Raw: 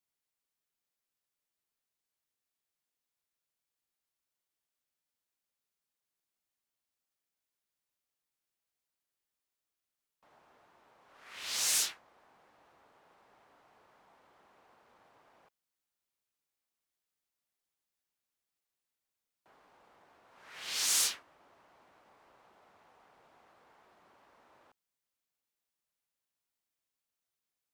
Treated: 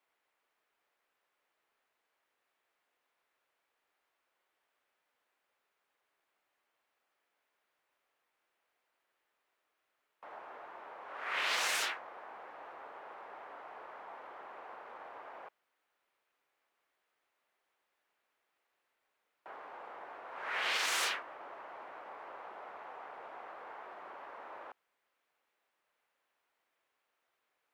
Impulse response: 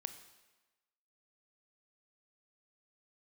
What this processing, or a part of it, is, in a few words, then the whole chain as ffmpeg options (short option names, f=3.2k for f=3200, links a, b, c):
DJ mixer with the lows and highs turned down: -filter_complex "[0:a]acrossover=split=360 2600:gain=0.112 1 0.1[a][b][c];[a][b][c]amix=inputs=3:normalize=0,alimiter=level_in=16.5dB:limit=-24dB:level=0:latency=1:release=162,volume=-16.5dB,volume=17dB"